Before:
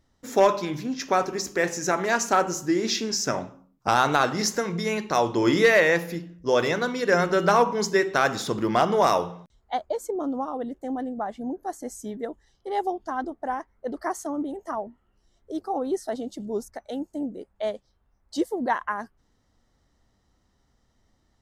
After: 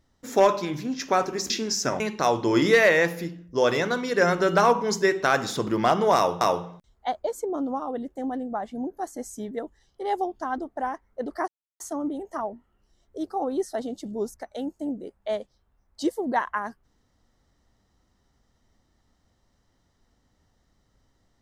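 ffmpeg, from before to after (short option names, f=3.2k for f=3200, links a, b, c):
-filter_complex "[0:a]asplit=5[a][b][c][d][e];[a]atrim=end=1.502[f];[b]atrim=start=2.918:end=3.422[g];[c]atrim=start=4.908:end=9.322[h];[d]atrim=start=9.068:end=14.14,asetpts=PTS-STARTPTS,afade=t=out:st=5.068:d=0.004:c=hsin,apad=pad_dur=0.32[i];[e]atrim=start=14.14,asetpts=PTS-STARTPTS,afade=t=in:d=0.004:c=hsin[j];[f][g]acrossfade=d=0.004:c1=hsin:c2=hsin[k];[k][h]acrossfade=d=0.004:c1=hsin:c2=hsin[l];[i][j]concat=n=2:v=0:a=1[m];[l][m]acrossfade=d=0.004:c1=hsin:c2=hsin"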